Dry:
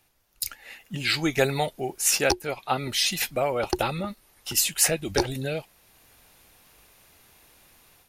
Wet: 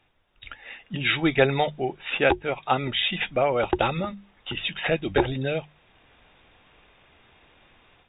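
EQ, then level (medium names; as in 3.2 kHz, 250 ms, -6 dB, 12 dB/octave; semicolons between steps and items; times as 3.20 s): brick-wall FIR low-pass 3.8 kHz; hum notches 50/100/150/200 Hz; +3.0 dB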